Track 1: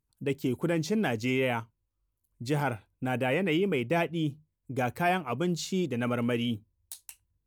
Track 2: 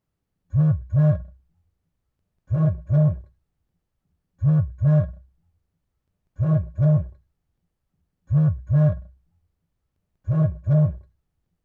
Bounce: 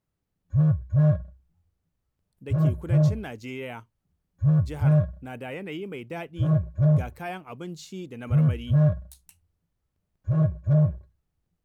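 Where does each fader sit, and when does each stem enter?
−8.0, −2.0 decibels; 2.20, 0.00 seconds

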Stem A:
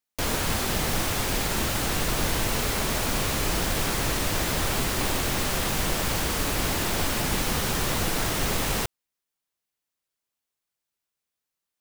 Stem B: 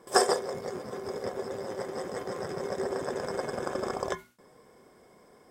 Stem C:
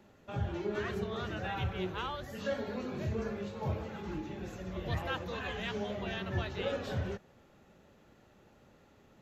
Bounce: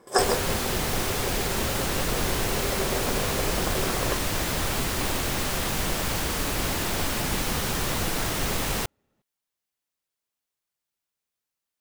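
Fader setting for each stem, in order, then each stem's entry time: −1.0, +0.5, −12.5 decibels; 0.00, 0.00, 0.00 seconds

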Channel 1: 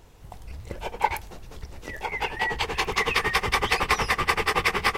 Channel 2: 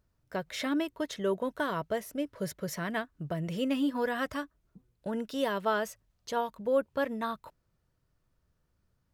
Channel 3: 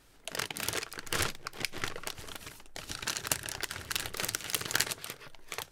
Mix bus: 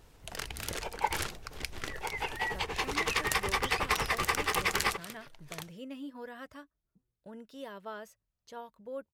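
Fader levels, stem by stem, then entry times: −7.0, −13.5, −4.5 decibels; 0.00, 2.20, 0.00 seconds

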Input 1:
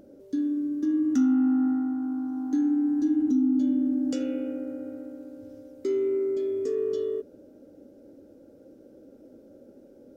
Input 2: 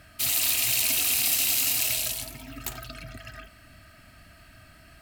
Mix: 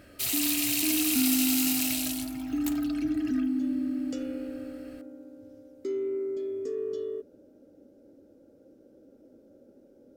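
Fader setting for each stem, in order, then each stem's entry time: −5.0, −4.0 decibels; 0.00, 0.00 seconds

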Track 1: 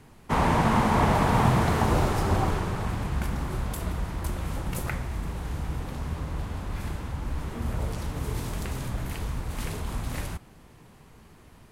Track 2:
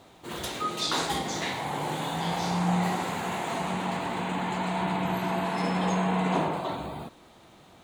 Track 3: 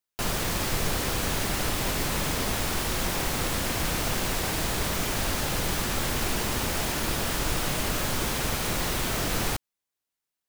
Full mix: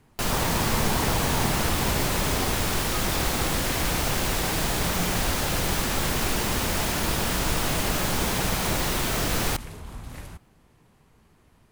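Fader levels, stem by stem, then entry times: −7.0, −9.0, +2.0 decibels; 0.00, 2.30, 0.00 seconds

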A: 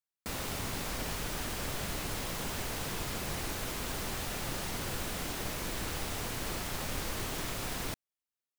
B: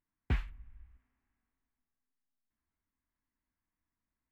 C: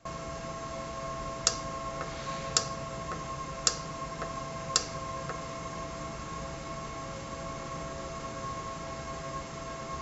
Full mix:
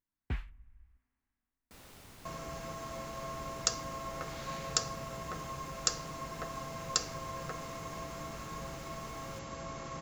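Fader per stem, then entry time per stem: −17.5, −4.5, −4.0 decibels; 1.45, 0.00, 2.20 seconds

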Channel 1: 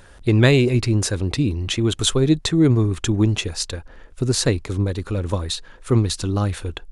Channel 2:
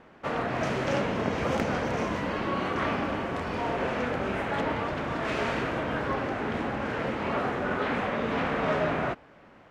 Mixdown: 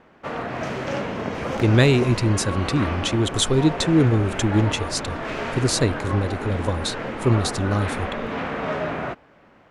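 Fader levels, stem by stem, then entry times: −1.5, +0.5 decibels; 1.35, 0.00 seconds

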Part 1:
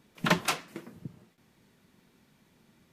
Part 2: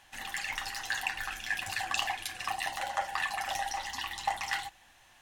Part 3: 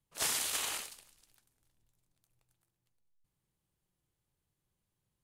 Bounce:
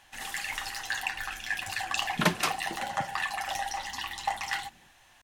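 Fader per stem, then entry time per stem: 0.0, +1.0, −12.0 decibels; 1.95, 0.00, 0.00 seconds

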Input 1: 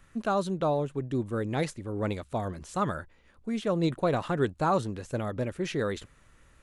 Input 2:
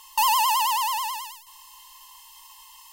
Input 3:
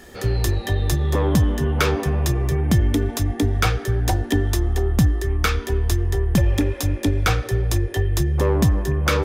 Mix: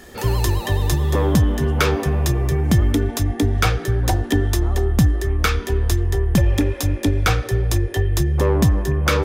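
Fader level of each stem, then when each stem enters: −13.5, −13.0, +1.5 decibels; 0.00, 0.00, 0.00 seconds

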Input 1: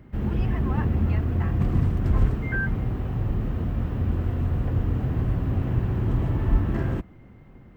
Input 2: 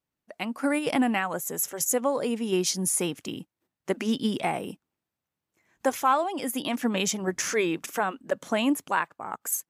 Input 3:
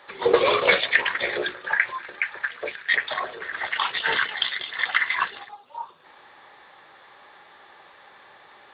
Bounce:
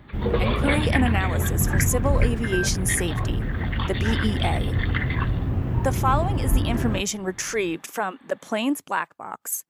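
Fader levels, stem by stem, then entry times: 0.0, +0.5, −7.5 decibels; 0.00, 0.00, 0.00 seconds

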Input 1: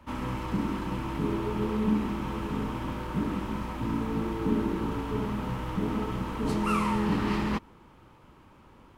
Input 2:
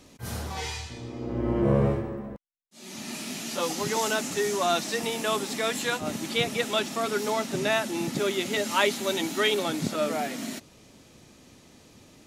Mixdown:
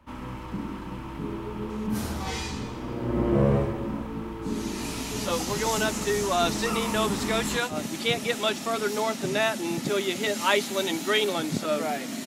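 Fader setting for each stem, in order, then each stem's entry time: −4.0, +0.5 decibels; 0.00, 1.70 seconds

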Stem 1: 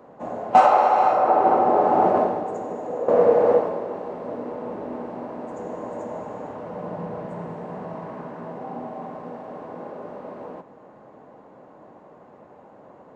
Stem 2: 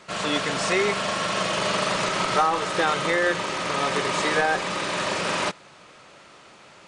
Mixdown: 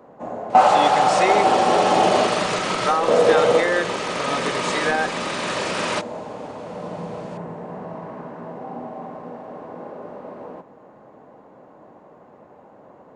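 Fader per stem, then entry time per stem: +0.5, +0.5 decibels; 0.00, 0.50 seconds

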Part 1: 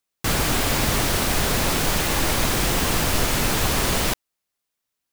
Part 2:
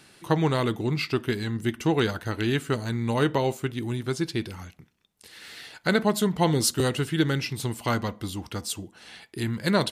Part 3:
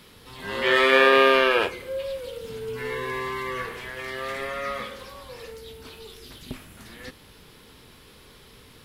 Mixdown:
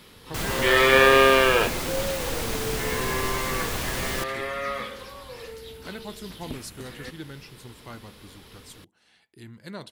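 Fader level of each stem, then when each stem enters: −8.5, −16.0, +0.5 decibels; 0.10, 0.00, 0.00 seconds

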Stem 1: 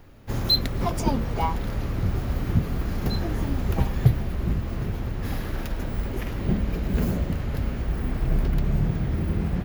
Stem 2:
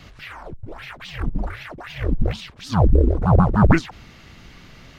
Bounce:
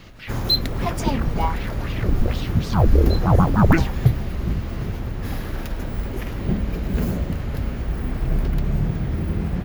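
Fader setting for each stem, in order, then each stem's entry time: +1.5, −1.0 decibels; 0.00, 0.00 seconds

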